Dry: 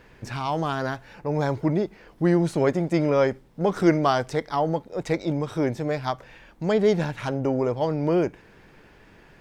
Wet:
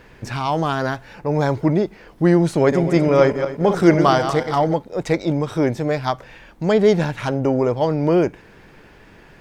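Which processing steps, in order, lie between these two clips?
2.59–4.74 s: backward echo that repeats 123 ms, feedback 51%, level -8 dB; trim +5.5 dB

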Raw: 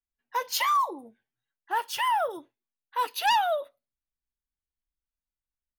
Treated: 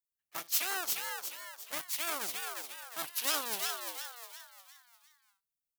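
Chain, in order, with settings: cycle switcher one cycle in 3, inverted; pre-emphasis filter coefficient 0.9; frequency-shifting echo 353 ms, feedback 42%, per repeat +120 Hz, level -3.5 dB

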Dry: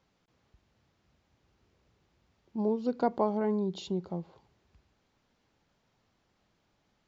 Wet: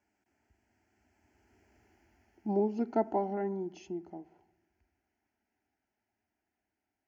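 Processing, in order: Doppler pass-by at 1.87 s, 26 m/s, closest 15 m; high-pass 73 Hz; static phaser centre 760 Hz, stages 8; on a send: reverberation RT60 1.1 s, pre-delay 3 ms, DRR 18 dB; on the sum: trim +8.5 dB

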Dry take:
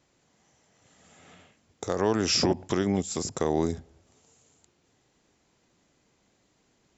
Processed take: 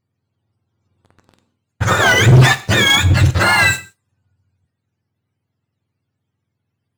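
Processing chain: spectrum inverted on a logarithmic axis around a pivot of 810 Hz; waveshaping leveller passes 5; gated-style reverb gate 190 ms falling, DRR 11.5 dB

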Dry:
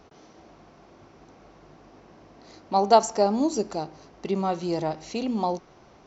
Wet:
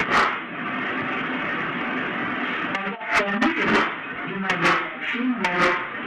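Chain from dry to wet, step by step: one-bit delta coder 16 kbps, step -15 dBFS; gate with hold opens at -17 dBFS; treble shelf 2.5 kHz +8.5 dB; reverb removal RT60 1.4 s; high-order bell 600 Hz -9.5 dB; reverberation RT60 0.60 s, pre-delay 3 ms, DRR -7.5 dB; compressor with a negative ratio -17 dBFS, ratio -0.5; saturation -12.5 dBFS, distortion -12 dB

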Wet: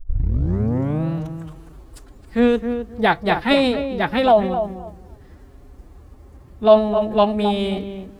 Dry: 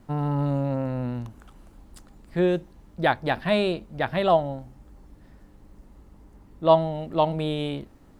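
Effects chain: tape start-up on the opening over 1.07 s; filtered feedback delay 262 ms, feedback 20%, low-pass 1.4 kHz, level -8 dB; formant-preserving pitch shift +5 st; trim +6 dB

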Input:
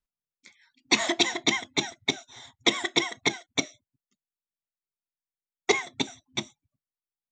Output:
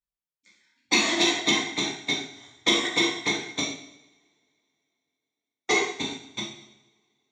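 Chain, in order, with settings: two-slope reverb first 0.91 s, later 3.4 s, from -28 dB, DRR -6 dB; Chebyshev shaper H 5 -30 dB, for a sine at -3 dBFS; upward expansion 1.5:1, over -32 dBFS; trim -4 dB

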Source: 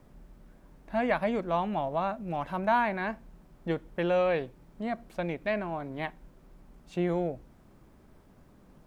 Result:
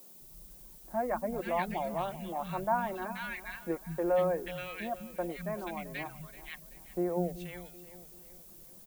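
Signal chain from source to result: comb 5.6 ms, depth 41%; three bands offset in time mids, lows, highs 200/480 ms, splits 200/1500 Hz; reverb removal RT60 0.58 s; on a send: feedback delay 382 ms, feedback 44%, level -16 dB; on the sum: added noise violet -51 dBFS; trim -3 dB

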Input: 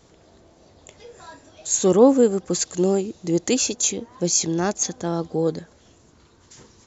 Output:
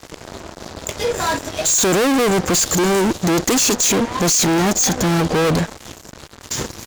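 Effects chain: fuzz box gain 42 dB, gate -51 dBFS; trim -1.5 dB

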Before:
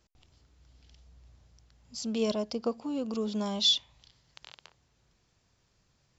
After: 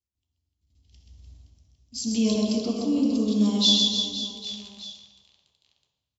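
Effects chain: gate -56 dBFS, range -29 dB; peaking EQ 1.5 kHz -11.5 dB 1.5 oct; reverse bouncing-ball echo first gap 130 ms, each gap 1.3×, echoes 5; reverberation RT60 1.0 s, pre-delay 3 ms, DRR 0 dB

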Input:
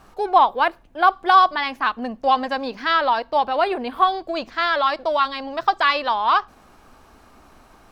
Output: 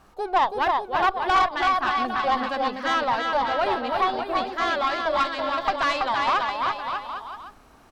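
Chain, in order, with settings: bouncing-ball echo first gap 330 ms, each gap 0.8×, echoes 5; valve stage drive 11 dB, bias 0.5; trim -2.5 dB

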